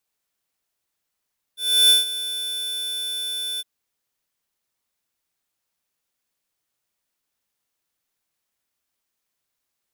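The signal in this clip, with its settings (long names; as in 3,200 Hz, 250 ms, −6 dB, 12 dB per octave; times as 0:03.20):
note with an ADSR envelope square 3,510 Hz, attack 328 ms, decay 149 ms, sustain −15 dB, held 2.03 s, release 31 ms −13 dBFS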